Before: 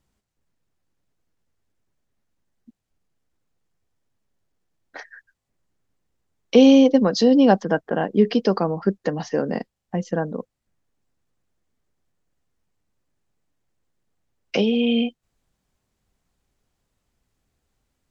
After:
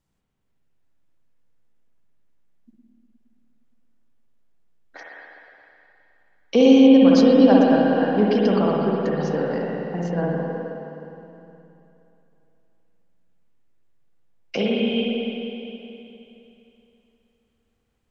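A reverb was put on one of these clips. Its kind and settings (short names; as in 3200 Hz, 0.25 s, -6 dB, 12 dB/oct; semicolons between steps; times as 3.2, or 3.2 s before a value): spring tank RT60 3 s, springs 52/58 ms, chirp 70 ms, DRR -4 dB; gain -4.5 dB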